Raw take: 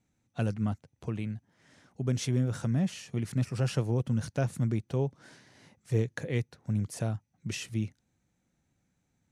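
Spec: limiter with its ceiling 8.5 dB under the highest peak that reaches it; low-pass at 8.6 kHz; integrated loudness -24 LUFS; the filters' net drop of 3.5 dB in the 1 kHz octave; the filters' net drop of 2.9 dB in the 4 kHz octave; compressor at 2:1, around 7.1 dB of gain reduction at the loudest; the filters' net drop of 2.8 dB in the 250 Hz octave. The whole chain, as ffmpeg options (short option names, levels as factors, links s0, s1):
-af "lowpass=8600,equalizer=f=250:t=o:g=-3.5,equalizer=f=1000:t=o:g=-5,equalizer=f=4000:t=o:g=-3.5,acompressor=threshold=0.0141:ratio=2,volume=8.41,alimiter=limit=0.224:level=0:latency=1"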